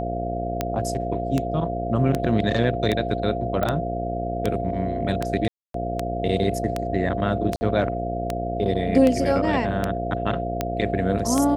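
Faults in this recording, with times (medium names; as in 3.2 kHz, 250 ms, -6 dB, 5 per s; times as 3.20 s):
buzz 60 Hz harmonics 12 -29 dBFS
tick 78 rpm -9 dBFS
whine 690 Hz -28 dBFS
3.63 s: pop -12 dBFS
5.48–5.74 s: dropout 263 ms
7.56–7.61 s: dropout 50 ms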